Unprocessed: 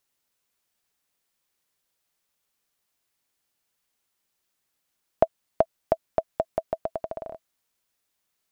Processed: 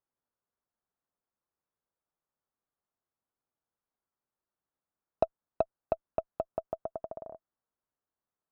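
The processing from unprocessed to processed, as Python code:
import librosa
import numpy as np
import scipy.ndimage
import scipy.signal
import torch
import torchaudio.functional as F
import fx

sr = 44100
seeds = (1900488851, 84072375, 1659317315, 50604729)

y = scipy.signal.sosfilt(scipy.signal.butter(4, 1400.0, 'lowpass', fs=sr, output='sos'), x)
y = fx.cheby_harmonics(y, sr, harmonics=(8,), levels_db=(-32,), full_scale_db=-4.0)
y = F.gain(torch.from_numpy(y), -7.0).numpy()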